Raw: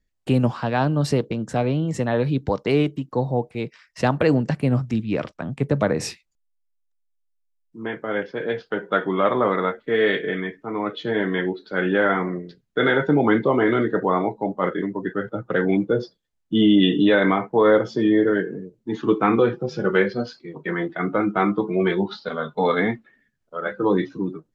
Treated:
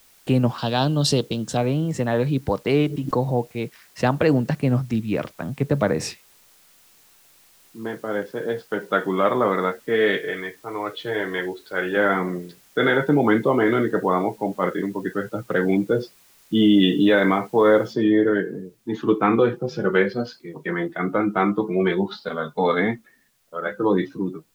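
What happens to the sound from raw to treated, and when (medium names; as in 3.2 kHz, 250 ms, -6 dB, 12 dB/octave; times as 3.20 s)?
0.58–1.57 s: resonant high shelf 2.7 kHz +7.5 dB, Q 3
2.83–3.51 s: swell ahead of each attack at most 72 dB/s
7.81–8.74 s: peaking EQ 2.4 kHz -10 dB
10.19–11.97 s: peaking EQ 220 Hz -14 dB
17.93 s: noise floor step -55 dB -67 dB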